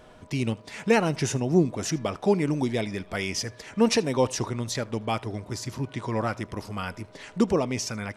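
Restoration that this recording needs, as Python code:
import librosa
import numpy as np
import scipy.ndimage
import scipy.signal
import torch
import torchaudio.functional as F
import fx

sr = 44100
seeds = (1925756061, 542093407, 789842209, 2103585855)

y = fx.notch(x, sr, hz=620.0, q=30.0)
y = fx.fix_echo_inverse(y, sr, delay_ms=78, level_db=-23.5)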